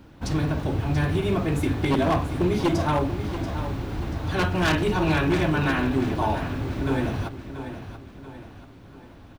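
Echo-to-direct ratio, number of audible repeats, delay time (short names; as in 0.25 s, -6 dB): -10.0 dB, 4, 0.684 s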